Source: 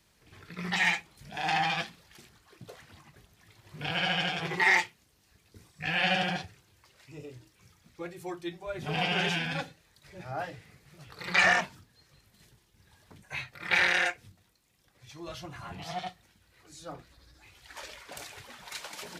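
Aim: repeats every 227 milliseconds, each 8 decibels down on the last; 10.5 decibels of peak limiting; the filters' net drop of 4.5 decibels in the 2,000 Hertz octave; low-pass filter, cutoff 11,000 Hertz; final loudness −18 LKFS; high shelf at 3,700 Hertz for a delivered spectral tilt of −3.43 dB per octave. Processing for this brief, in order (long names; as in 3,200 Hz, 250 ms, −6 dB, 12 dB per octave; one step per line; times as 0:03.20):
low-pass filter 11,000 Hz
parametric band 2,000 Hz −6.5 dB
high-shelf EQ 3,700 Hz +4.5 dB
brickwall limiter −23.5 dBFS
repeating echo 227 ms, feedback 40%, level −8 dB
level +18.5 dB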